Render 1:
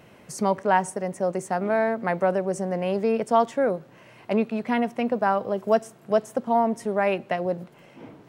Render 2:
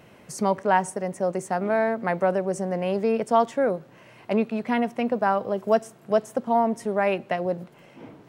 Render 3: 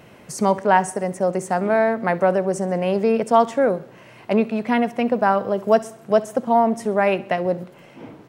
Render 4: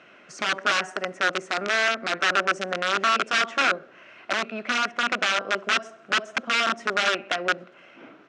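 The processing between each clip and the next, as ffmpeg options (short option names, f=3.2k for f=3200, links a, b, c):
-af anull
-af "aecho=1:1:66|132|198|264:0.106|0.054|0.0276|0.0141,volume=4.5dB"
-af "aeval=exprs='(mod(4.73*val(0)+1,2)-1)/4.73':c=same,highpass=360,equalizer=f=470:t=q:w=4:g=-7,equalizer=f=890:t=q:w=4:g=-9,equalizer=f=1.4k:t=q:w=4:g=9,equalizer=f=2.6k:t=q:w=4:g=4,equalizer=f=4.6k:t=q:w=4:g=-5,lowpass=f=5.7k:w=0.5412,lowpass=f=5.7k:w=1.3066,volume=-2.5dB"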